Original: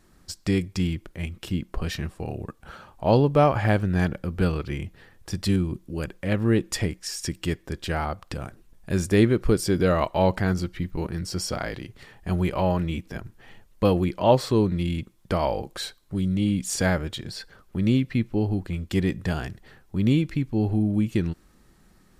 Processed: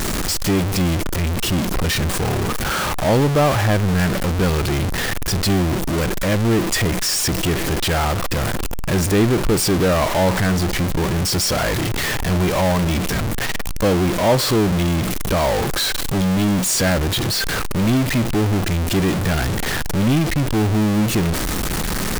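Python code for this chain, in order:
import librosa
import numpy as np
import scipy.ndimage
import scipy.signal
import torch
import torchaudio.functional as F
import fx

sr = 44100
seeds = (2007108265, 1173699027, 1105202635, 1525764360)

y = x + 0.5 * 10.0 ** (-20.0 / 20.0) * np.sign(x)
y = fx.power_curve(y, sr, exponent=0.7)
y = y * 10.0 ** (-2.0 / 20.0)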